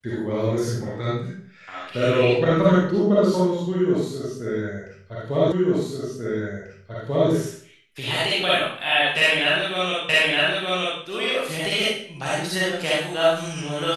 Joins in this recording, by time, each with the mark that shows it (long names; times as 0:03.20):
0:05.52: the same again, the last 1.79 s
0:10.09: the same again, the last 0.92 s